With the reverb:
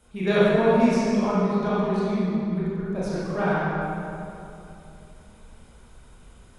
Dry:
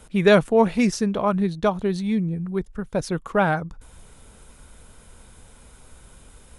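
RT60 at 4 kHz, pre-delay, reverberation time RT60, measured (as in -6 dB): 1.8 s, 21 ms, 2.8 s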